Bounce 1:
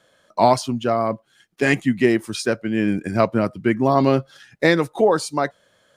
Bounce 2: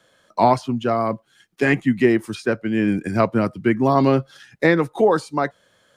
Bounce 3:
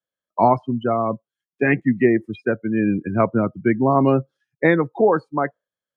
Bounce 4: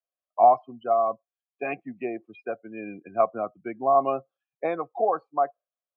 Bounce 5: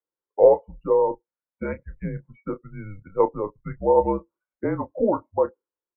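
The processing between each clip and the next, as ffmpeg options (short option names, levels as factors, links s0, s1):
-filter_complex "[0:a]acrossover=split=150|2700[s0][s1][s2];[s2]acompressor=threshold=0.00891:ratio=6[s3];[s0][s1][s3]amix=inputs=3:normalize=0,equalizer=f=610:w=4.2:g=-3.5,volume=1.12"
-af "afftdn=nr=34:nf=-26"
-filter_complex "[0:a]asplit=3[s0][s1][s2];[s0]bandpass=f=730:t=q:w=8,volume=1[s3];[s1]bandpass=f=1090:t=q:w=8,volume=0.501[s4];[s2]bandpass=f=2440:t=q:w=8,volume=0.355[s5];[s3][s4][s5]amix=inputs=3:normalize=0,volume=1.58"
-filter_complex "[0:a]lowshelf=f=180:g=-7,highpass=f=170:t=q:w=0.5412,highpass=f=170:t=q:w=1.307,lowpass=f=2000:t=q:w=0.5176,lowpass=f=2000:t=q:w=0.7071,lowpass=f=2000:t=q:w=1.932,afreqshift=-200,asplit=2[s0][s1];[s1]adelay=29,volume=0.282[s2];[s0][s2]amix=inputs=2:normalize=0,volume=1.33"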